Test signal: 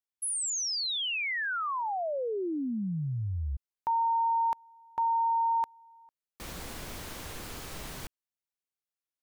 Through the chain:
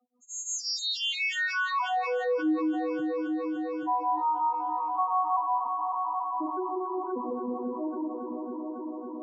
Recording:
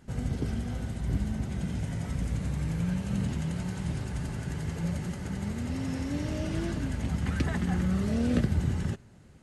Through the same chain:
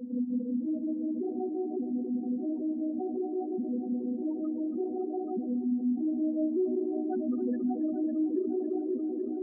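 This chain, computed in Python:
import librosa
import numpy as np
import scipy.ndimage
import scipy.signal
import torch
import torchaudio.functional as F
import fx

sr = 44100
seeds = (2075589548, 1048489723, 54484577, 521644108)

y = fx.vocoder_arp(x, sr, chord='major triad', root=59, every_ms=596)
y = fx.highpass(y, sr, hz=130.0, slope=6)
y = fx.spec_topn(y, sr, count=4)
y = y * (1.0 - 0.97 / 2.0 + 0.97 / 2.0 * np.cos(2.0 * np.pi * 5.6 * (np.arange(len(y)) / sr)))
y = fx.echo_heads(y, sr, ms=277, heads='all three', feedback_pct=43, wet_db=-17.5)
y = fx.env_flatten(y, sr, amount_pct=70)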